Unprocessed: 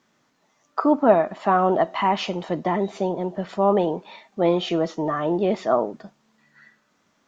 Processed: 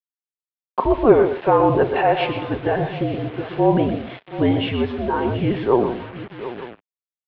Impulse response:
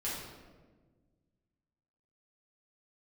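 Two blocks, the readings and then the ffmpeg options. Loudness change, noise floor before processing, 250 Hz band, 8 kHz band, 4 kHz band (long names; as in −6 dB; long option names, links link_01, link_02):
+2.5 dB, −67 dBFS, +3.0 dB, can't be measured, +2.0 dB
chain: -af "aecho=1:1:123|156|731|894:0.355|0.106|0.2|0.126,acrusher=bits=5:mix=0:aa=0.5,highpass=frequency=410:width_type=q:width=0.5412,highpass=frequency=410:width_type=q:width=1.307,lowpass=frequency=3600:width_type=q:width=0.5176,lowpass=frequency=3600:width_type=q:width=0.7071,lowpass=frequency=3600:width_type=q:width=1.932,afreqshift=-240,volume=4dB"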